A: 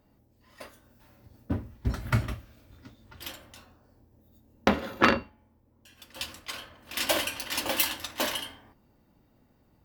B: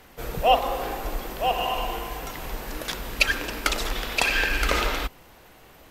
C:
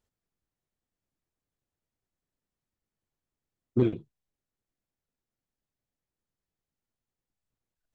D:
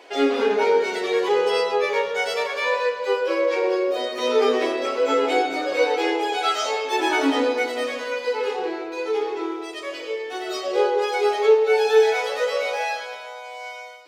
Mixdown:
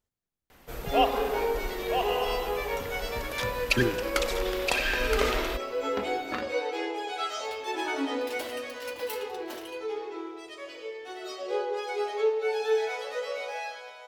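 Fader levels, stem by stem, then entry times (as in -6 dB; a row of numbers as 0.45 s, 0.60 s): -14.5 dB, -5.0 dB, -3.0 dB, -10.0 dB; 1.30 s, 0.50 s, 0.00 s, 0.75 s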